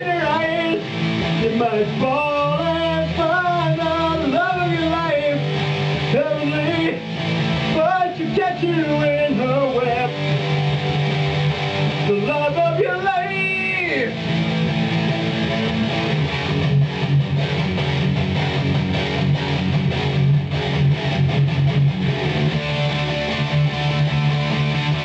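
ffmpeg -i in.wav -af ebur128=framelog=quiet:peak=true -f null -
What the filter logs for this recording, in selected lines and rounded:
Integrated loudness:
  I:         -19.4 LUFS
  Threshold: -29.4 LUFS
Loudness range:
  LRA:         0.9 LU
  Threshold: -39.4 LUFS
  LRA low:   -19.8 LUFS
  LRA high:  -18.9 LUFS
True peak:
  Peak:       -8.0 dBFS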